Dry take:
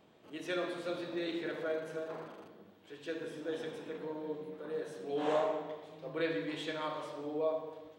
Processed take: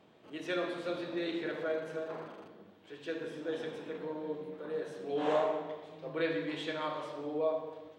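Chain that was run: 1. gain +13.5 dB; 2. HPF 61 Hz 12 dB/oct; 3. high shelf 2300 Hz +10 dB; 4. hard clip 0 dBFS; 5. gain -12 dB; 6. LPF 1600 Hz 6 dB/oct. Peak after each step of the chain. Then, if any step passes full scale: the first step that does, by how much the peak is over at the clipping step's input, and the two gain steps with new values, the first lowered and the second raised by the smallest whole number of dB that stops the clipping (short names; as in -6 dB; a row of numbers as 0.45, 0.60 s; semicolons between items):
-6.5, -6.5, -5.5, -5.5, -17.5, -18.5 dBFS; no overload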